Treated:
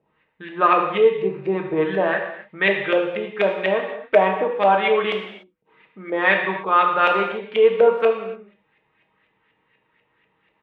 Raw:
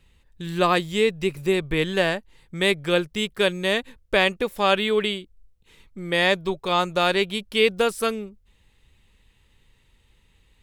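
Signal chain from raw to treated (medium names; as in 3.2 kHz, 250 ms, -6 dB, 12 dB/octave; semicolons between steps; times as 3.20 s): resonant high shelf 4.6 kHz -10 dB, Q 1.5; comb 6.4 ms, depth 33%; LFO low-pass saw up 4.1 Hz 600–2300 Hz; high-pass 250 Hz 12 dB/octave; gated-style reverb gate 320 ms falling, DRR 1.5 dB; trim -1 dB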